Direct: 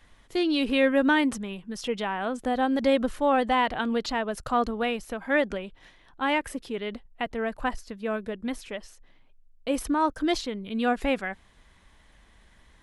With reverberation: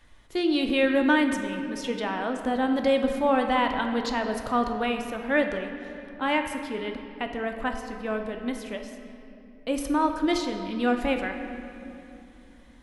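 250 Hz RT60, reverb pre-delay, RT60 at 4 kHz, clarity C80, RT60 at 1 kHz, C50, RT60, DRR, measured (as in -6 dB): 4.1 s, 3 ms, 1.7 s, 7.5 dB, 2.6 s, 6.0 dB, 2.9 s, 4.5 dB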